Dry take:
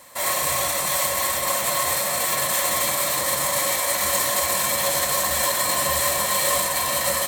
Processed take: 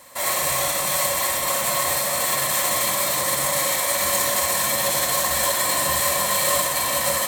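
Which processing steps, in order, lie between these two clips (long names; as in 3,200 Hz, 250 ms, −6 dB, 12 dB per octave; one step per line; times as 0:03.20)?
flutter between parallel walls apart 10 metres, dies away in 0.42 s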